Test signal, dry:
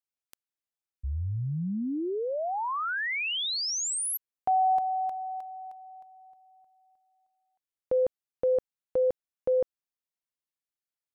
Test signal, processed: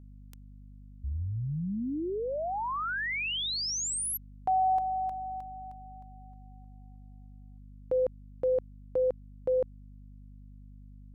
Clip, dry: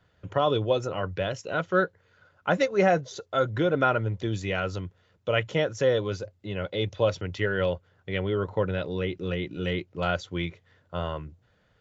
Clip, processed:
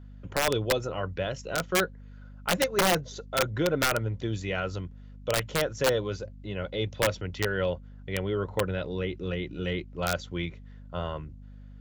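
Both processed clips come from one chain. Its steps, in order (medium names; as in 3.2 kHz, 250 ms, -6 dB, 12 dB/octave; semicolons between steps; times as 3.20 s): hum 50 Hz, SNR 16 dB; integer overflow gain 14.5 dB; trim -2 dB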